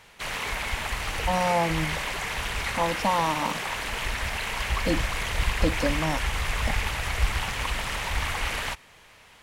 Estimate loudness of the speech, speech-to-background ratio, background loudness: -29.0 LUFS, 0.0 dB, -29.0 LUFS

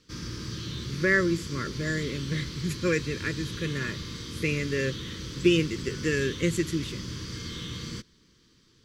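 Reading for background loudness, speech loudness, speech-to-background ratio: -36.5 LUFS, -28.5 LUFS, 8.0 dB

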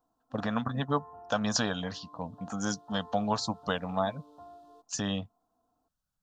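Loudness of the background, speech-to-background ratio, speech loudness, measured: -52.0 LUFS, 19.5 dB, -32.5 LUFS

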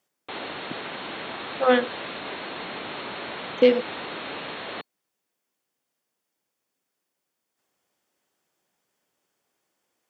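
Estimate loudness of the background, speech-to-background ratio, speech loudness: -34.5 LUFS, 12.5 dB, -22.0 LUFS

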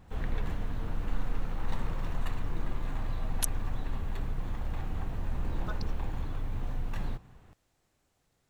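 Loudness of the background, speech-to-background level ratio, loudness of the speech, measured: -38.0 LUFS, -1.5 dB, -39.5 LUFS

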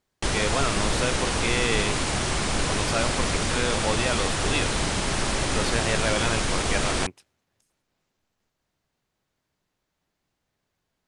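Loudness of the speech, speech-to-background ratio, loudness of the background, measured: -29.5 LUFS, -4.0 dB, -25.5 LUFS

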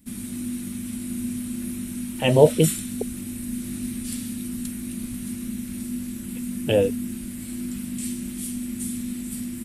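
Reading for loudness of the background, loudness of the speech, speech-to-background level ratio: -31.0 LUFS, -20.5 LUFS, 10.5 dB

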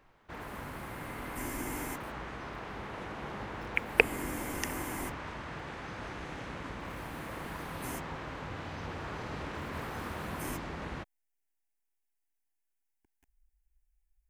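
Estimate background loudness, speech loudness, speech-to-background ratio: -41.0 LUFS, -35.5 LUFS, 5.5 dB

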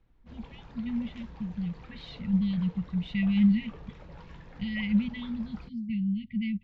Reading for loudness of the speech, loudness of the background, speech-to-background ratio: -30.0 LUFS, -49.5 LUFS, 19.5 dB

